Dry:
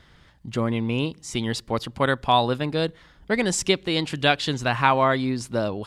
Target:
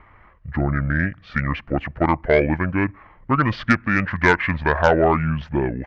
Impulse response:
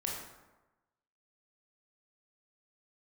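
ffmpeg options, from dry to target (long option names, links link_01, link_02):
-af "asetrate=26990,aresample=44100,atempo=1.63392,lowpass=frequency=1700:width_type=q:width=2.3,aeval=exprs='1*(cos(1*acos(clip(val(0)/1,-1,1)))-cos(1*PI/2))+0.141*(cos(5*acos(clip(val(0)/1,-1,1)))-cos(5*PI/2))':channel_layout=same,volume=-1.5dB"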